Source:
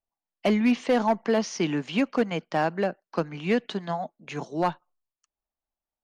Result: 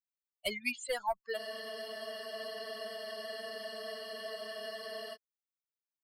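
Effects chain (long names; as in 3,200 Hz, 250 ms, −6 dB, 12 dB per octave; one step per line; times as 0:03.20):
spectral dynamics exaggerated over time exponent 3
drawn EQ curve 120 Hz 0 dB, 220 Hz −30 dB, 420 Hz −17 dB, 4,300 Hz +1 dB, 7,800 Hz +9 dB
frozen spectrum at 0:01.39, 3.75 s
level +6 dB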